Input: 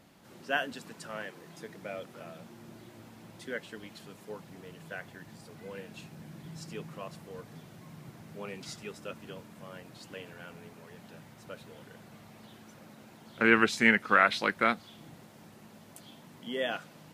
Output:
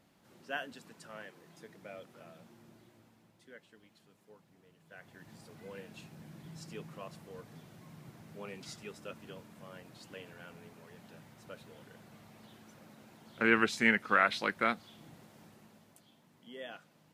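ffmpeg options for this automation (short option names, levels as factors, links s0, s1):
-af "volume=1.68,afade=t=out:st=2.52:d=0.84:silence=0.375837,afade=t=in:st=4.86:d=0.48:silence=0.237137,afade=t=out:st=15.42:d=0.64:silence=0.354813"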